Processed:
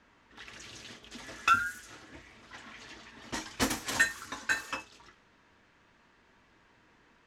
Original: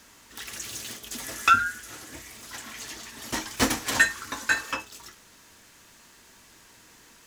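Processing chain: level-controlled noise filter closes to 2.2 kHz, open at -23.5 dBFS; trim -6 dB

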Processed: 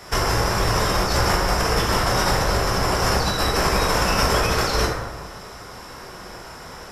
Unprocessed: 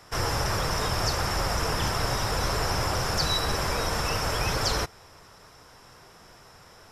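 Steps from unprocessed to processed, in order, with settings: compressor with a negative ratio -29 dBFS, ratio -0.5; plate-style reverb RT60 1.2 s, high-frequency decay 0.45×, DRR -3 dB; trim +5.5 dB

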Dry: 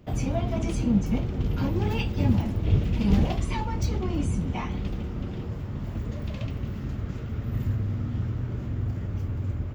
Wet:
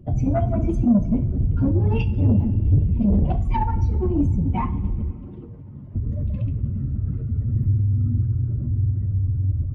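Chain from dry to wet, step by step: spectral contrast enhancement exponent 1.9; 5.11–5.95 s: high-pass 550 Hz 6 dB/octave; dynamic bell 1.4 kHz, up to +5 dB, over -54 dBFS, Q 1.1; saturation -19.5 dBFS, distortion -15 dB; two-slope reverb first 0.36 s, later 2.7 s, from -17 dB, DRR 8.5 dB; trim +7.5 dB

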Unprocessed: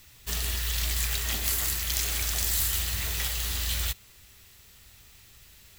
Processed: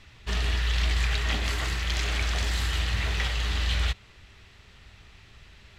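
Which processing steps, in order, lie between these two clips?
low-pass 3 kHz 12 dB/octave; trim +6 dB

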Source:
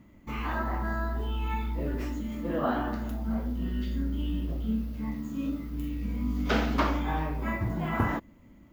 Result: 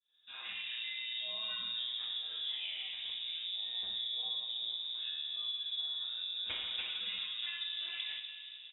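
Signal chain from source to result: fade-in on the opening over 0.79 s; comb 7.2 ms, depth 70%; compression 5:1, threshold -33 dBFS, peak gain reduction 12.5 dB; algorithmic reverb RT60 3.3 s, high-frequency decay 0.35×, pre-delay 5 ms, DRR 5 dB; frequency inversion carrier 3.7 kHz; trim -6.5 dB

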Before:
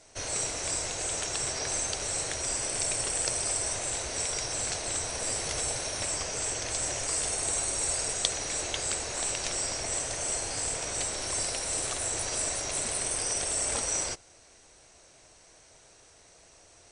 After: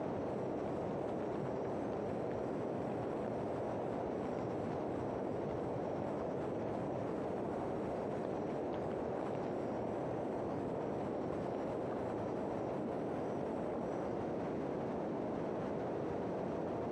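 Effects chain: one-bit delta coder 64 kbps, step -31.5 dBFS; ladder band-pass 260 Hz, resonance 25%; harmony voices +5 st -7 dB; level flattener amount 100%; trim +10 dB

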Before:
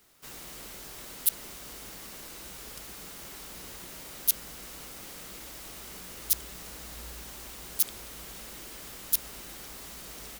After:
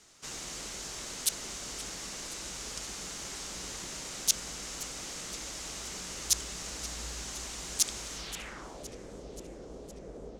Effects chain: low-pass sweep 6.8 kHz -> 490 Hz, 8.15–8.87 s; modulated delay 522 ms, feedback 63%, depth 205 cents, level -16 dB; trim +2.5 dB

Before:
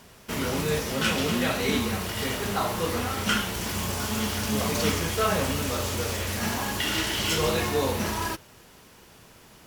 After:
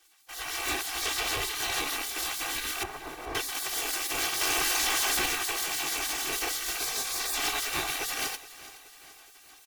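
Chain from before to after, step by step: rattle on loud lows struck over -32 dBFS, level -22 dBFS; harmonic tremolo 6.5 Hz, depth 50%, crossover 620 Hz; overload inside the chain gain 24 dB; spectral gate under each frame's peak -15 dB weak; 2.83–3.35 s: low-pass 1.1 kHz 12 dB/octave; feedback delay 422 ms, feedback 54%, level -17 dB; level rider gain up to 8.5 dB; comb 2.6 ms, depth 71%; 4.41–5.26 s: level flattener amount 100%; trim -5 dB

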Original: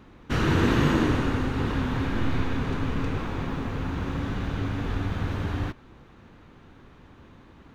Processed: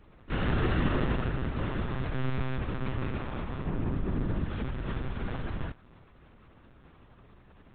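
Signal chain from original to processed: 3.66–4.45 s: tilt shelf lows +5.5 dB, about 830 Hz; monotone LPC vocoder at 8 kHz 130 Hz; trim -5 dB

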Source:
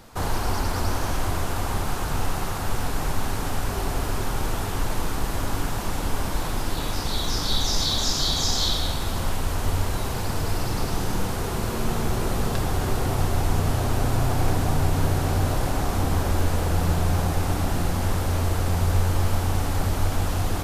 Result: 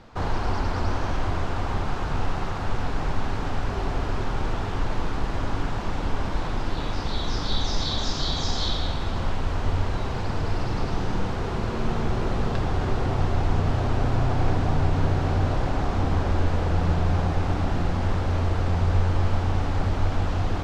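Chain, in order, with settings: distance through air 160 m

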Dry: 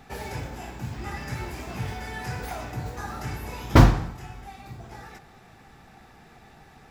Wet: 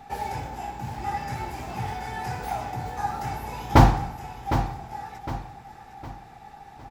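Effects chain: peaking EQ 820 Hz +15 dB 0.25 oct; on a send: feedback delay 759 ms, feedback 40%, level -10 dB; on the sum: trim -1.5 dB

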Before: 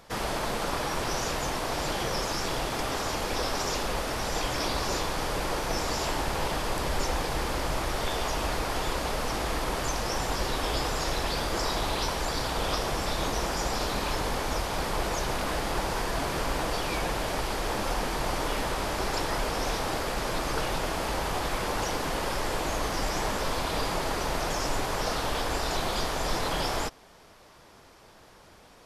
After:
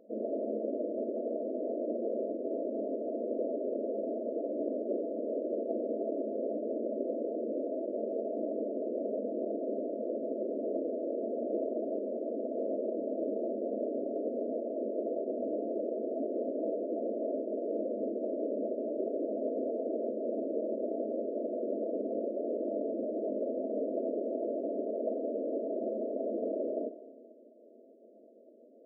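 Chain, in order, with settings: FFT band-pass 210–680 Hz; Schroeder reverb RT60 2 s, combs from 26 ms, DRR 11.5 dB; trim +1 dB

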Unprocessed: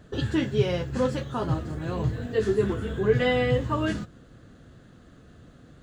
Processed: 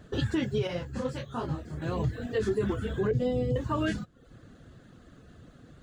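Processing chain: reverb removal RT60 0.55 s; 3.11–3.56 s: FFT filter 410 Hz 0 dB, 1.7 kHz -26 dB, 5.2 kHz -6 dB; peak limiter -19.5 dBFS, peak gain reduction 9 dB; 0.67–1.82 s: detune thickener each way 53 cents

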